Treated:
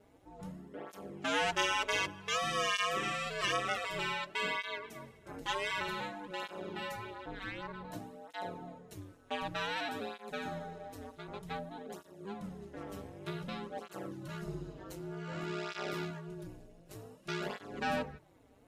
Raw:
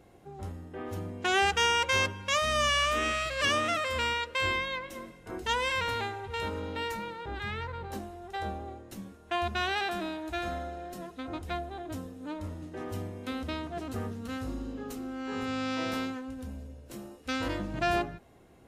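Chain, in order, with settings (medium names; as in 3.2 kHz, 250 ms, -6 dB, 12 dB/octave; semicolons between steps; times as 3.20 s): ring modulator 97 Hz; cancelling through-zero flanger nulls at 0.54 Hz, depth 5.9 ms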